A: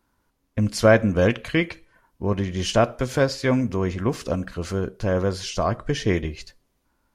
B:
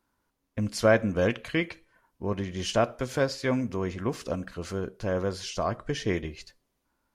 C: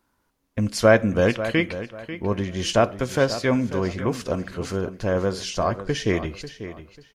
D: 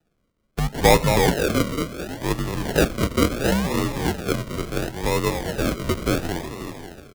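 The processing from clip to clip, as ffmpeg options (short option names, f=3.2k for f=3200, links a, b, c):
-af "lowshelf=f=130:g=-5.5,volume=-5dB"
-filter_complex "[0:a]asplit=2[a][b];[b]adelay=542,lowpass=f=5k:p=1,volume=-12.5dB,asplit=2[c][d];[d]adelay=542,lowpass=f=5k:p=1,volume=0.27,asplit=2[e][f];[f]adelay=542,lowpass=f=5k:p=1,volume=0.27[g];[a][c][e][g]amix=inputs=4:normalize=0,volume=5.5dB"
-filter_complex "[0:a]asplit=6[a][b][c][d][e][f];[b]adelay=221,afreqshift=43,volume=-7dB[g];[c]adelay=442,afreqshift=86,volume=-14.7dB[h];[d]adelay=663,afreqshift=129,volume=-22.5dB[i];[e]adelay=884,afreqshift=172,volume=-30.2dB[j];[f]adelay=1105,afreqshift=215,volume=-38dB[k];[a][g][h][i][j][k]amix=inputs=6:normalize=0,acrusher=samples=39:mix=1:aa=0.000001:lfo=1:lforange=23.4:lforate=0.72,afreqshift=-61"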